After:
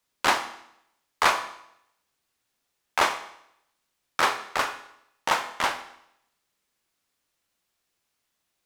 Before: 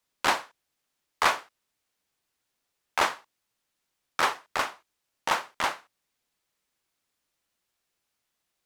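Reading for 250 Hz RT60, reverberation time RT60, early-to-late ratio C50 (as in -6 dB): 0.75 s, 0.75 s, 11.5 dB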